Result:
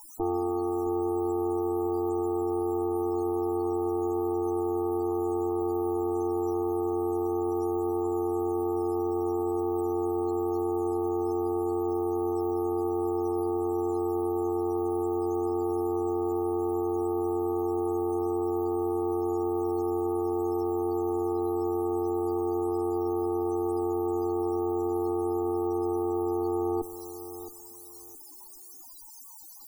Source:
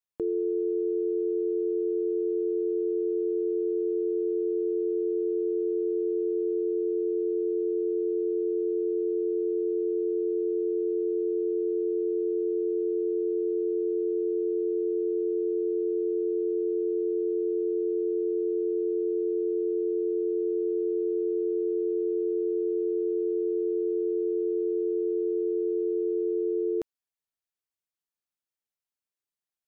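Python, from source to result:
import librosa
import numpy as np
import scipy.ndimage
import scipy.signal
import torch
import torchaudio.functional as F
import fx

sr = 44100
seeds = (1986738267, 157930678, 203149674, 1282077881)

y = fx.rider(x, sr, range_db=10, speed_s=0.5)
y = fx.cheby_harmonics(y, sr, harmonics=(2, 5), levels_db=(-7, -17), full_scale_db=-19.0)
y = fx.quant_dither(y, sr, seeds[0], bits=6, dither='triangular')
y = fx.fixed_phaser(y, sr, hz=520.0, stages=6)
y = fx.spec_topn(y, sr, count=32)
y = fx.echo_feedback(y, sr, ms=668, feedback_pct=24, wet_db=-13.0)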